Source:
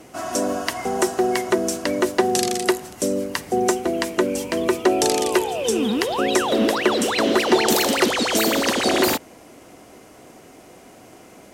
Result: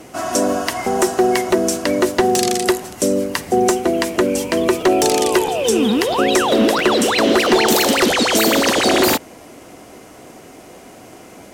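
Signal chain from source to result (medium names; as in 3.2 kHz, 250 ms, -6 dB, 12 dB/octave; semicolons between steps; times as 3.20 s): in parallel at -1 dB: peak limiter -11 dBFS, peak gain reduction 7.5 dB; on the sum: wavefolder -6 dBFS; crackling interface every 0.66 s, samples 512, repeat, from 0.84 s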